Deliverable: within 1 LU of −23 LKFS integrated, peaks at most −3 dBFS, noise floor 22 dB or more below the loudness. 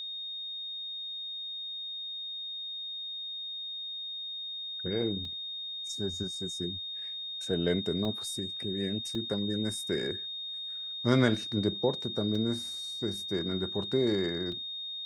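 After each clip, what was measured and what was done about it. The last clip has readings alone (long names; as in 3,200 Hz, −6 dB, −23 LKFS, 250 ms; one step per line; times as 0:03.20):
number of dropouts 5; longest dropout 2.3 ms; interfering tone 3,700 Hz; level of the tone −36 dBFS; integrated loudness −32.5 LKFS; sample peak −10.5 dBFS; target loudness −23.0 LKFS
→ repair the gap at 0:05.25/0:08.05/0:09.15/0:12.35/0:14.52, 2.3 ms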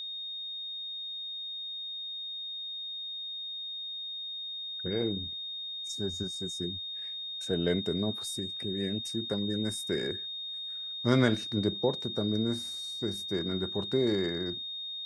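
number of dropouts 0; interfering tone 3,700 Hz; level of the tone −36 dBFS
→ notch filter 3,700 Hz, Q 30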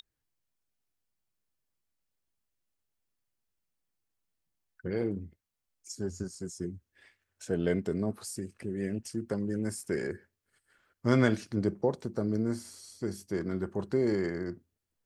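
interfering tone none found; integrated loudness −33.0 LKFS; sample peak −11.0 dBFS; target loudness −23.0 LKFS
→ level +10 dB
brickwall limiter −3 dBFS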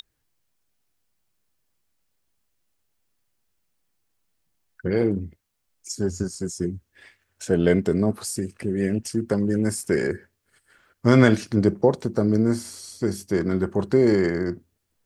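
integrated loudness −23.0 LKFS; sample peak −3.0 dBFS; background noise floor −75 dBFS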